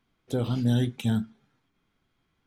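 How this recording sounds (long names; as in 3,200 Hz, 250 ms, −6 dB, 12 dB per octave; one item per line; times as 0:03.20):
background noise floor −75 dBFS
spectral slope −7.5 dB per octave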